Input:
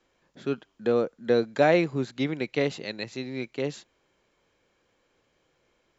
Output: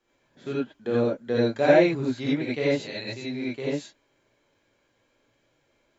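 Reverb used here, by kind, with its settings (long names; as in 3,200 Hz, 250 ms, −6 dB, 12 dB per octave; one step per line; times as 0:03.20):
reverb whose tail is shaped and stops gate 110 ms rising, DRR −6.5 dB
level −6.5 dB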